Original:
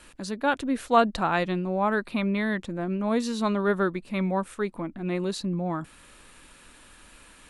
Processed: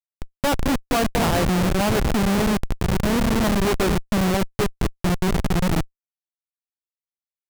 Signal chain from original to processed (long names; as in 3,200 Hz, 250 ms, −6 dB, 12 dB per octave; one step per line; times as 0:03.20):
delay that swaps between a low-pass and a high-pass 222 ms, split 970 Hz, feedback 60%, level −6.5 dB
downward expander −40 dBFS
comparator with hysteresis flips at −24 dBFS
level +8 dB